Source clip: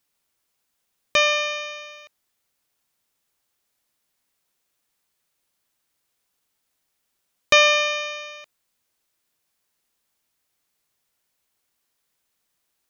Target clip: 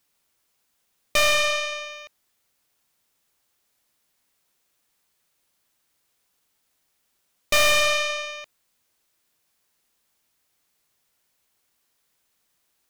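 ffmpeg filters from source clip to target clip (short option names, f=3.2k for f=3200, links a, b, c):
-af "aeval=exprs='(tanh(17.8*val(0)+0.75)-tanh(0.75))/17.8':c=same,volume=8dB"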